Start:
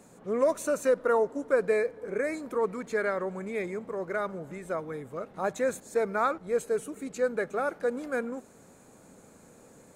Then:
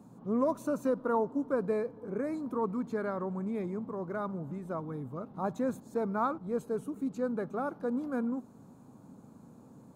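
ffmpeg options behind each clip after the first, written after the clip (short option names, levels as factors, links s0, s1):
-af "equalizer=f=125:t=o:w=1:g=11,equalizer=f=250:t=o:w=1:g=10,equalizer=f=500:t=o:w=1:g=-4,equalizer=f=1000:t=o:w=1:g=9,equalizer=f=2000:t=o:w=1:g=-12,equalizer=f=8000:t=o:w=1:g=-9,volume=0.473"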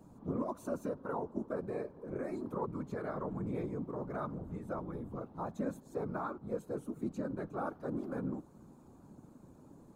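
-af "alimiter=level_in=1.26:limit=0.0631:level=0:latency=1:release=296,volume=0.794,afftfilt=real='hypot(re,im)*cos(2*PI*random(0))':imag='hypot(re,im)*sin(2*PI*random(1))':win_size=512:overlap=0.75,volume=1.41"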